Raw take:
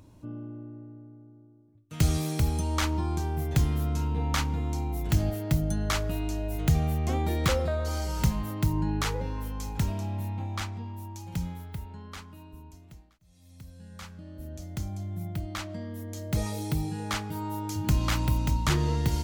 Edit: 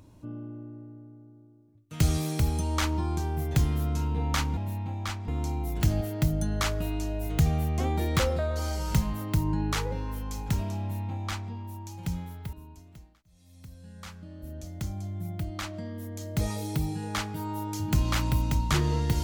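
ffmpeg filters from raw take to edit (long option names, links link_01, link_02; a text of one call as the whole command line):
ffmpeg -i in.wav -filter_complex "[0:a]asplit=4[link_01][link_02][link_03][link_04];[link_01]atrim=end=4.572[link_05];[link_02]atrim=start=10.088:end=10.802[link_06];[link_03]atrim=start=4.568:end=11.822[link_07];[link_04]atrim=start=12.488[link_08];[link_05][link_06]acrossfade=duration=0.004:curve1=hsin:curve2=hsin[link_09];[link_09][link_07]acrossfade=duration=0.004:curve1=hsin:curve2=hsin[link_10];[link_10][link_08]acrossfade=duration=0.004:curve1=hsin:curve2=hsin" out.wav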